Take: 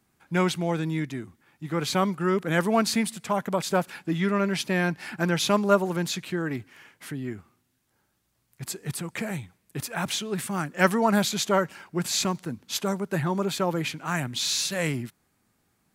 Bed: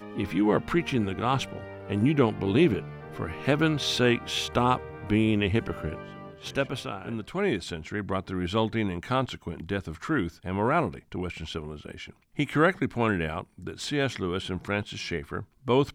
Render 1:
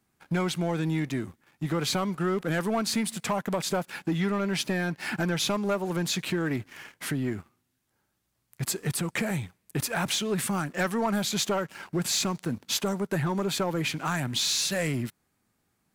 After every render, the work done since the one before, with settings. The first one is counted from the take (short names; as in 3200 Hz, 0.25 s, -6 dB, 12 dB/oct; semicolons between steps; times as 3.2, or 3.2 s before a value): compressor 3:1, threshold -33 dBFS, peak gain reduction 14.5 dB; sample leveller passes 2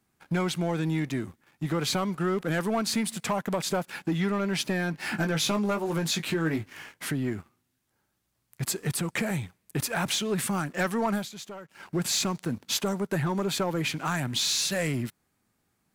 4.92–6.93 doubler 19 ms -6 dB; 11.13–11.89 dip -14 dB, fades 0.16 s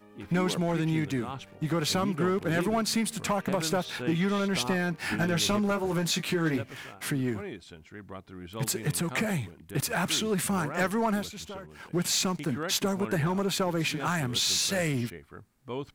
add bed -13 dB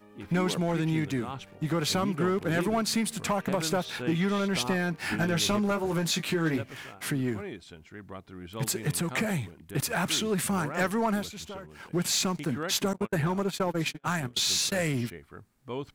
12.93–14.72 gate -30 dBFS, range -44 dB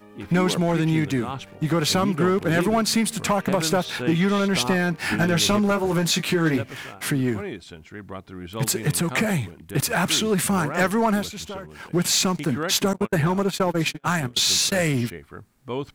gain +6.5 dB